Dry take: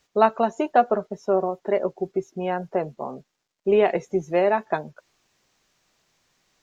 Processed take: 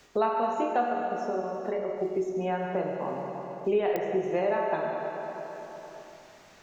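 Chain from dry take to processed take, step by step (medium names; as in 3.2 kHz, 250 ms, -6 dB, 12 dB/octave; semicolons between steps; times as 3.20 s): 0.87–1.99 s: compression, threshold -26 dBFS, peak gain reduction 10 dB; reverberation RT60 2.0 s, pre-delay 22 ms, DRR -0.5 dB; clicks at 3.96 s, -2 dBFS; three bands compressed up and down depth 70%; trim -8.5 dB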